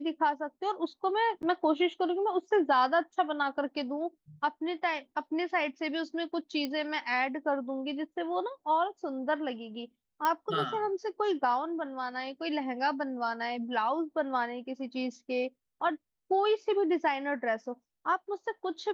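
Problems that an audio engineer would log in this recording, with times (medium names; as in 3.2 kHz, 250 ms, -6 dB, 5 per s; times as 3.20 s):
1.42–1.43 s: dropout 9.5 ms
6.65 s: pop -20 dBFS
10.25 s: pop -15 dBFS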